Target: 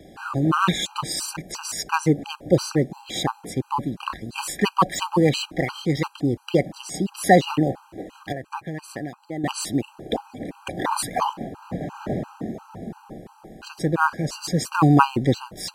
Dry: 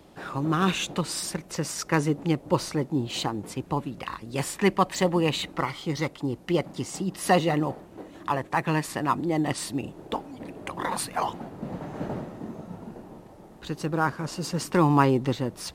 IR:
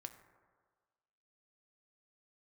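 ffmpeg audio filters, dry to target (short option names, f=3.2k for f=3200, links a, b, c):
-filter_complex "[0:a]asettb=1/sr,asplit=3[a][b][c];[a]atrim=end=8.324[d];[b]atrim=start=8.32:end=9.44,asetpts=PTS-STARTPTS,afade=t=in:d=0.004:c=qsin,afade=t=out:st=1.116:d=0.004:c=qsin,acompressor=threshold=-34dB:ratio=6[e];[c]atrim=start=9.436[f];[d][e]acrossfade=d=0.004:c1=hsin:c2=qsin[g];[g][f]acrossfade=d=0.004:c1=qsin:c2=hsin,afftfilt=real='re*gt(sin(2*PI*2.9*pts/sr)*(1-2*mod(floor(b*sr/1024/800),2)),0)':imag='im*gt(sin(2*PI*2.9*pts/sr)*(1-2*mod(floor(b*sr/1024/800),2)),0)':win_size=1024:overlap=0.75,volume=7dB"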